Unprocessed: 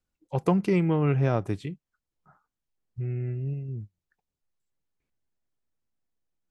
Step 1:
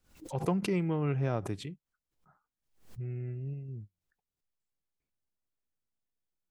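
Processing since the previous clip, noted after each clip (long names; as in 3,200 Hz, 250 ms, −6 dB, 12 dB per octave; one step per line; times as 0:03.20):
background raised ahead of every attack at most 130 dB per second
level −7 dB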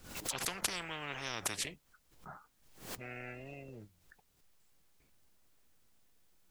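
every bin compressed towards the loudest bin 10 to 1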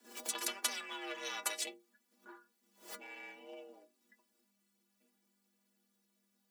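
mu-law and A-law mismatch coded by A
frequency shifter +200 Hz
stiff-string resonator 72 Hz, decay 0.42 s, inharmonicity 0.03
level +10.5 dB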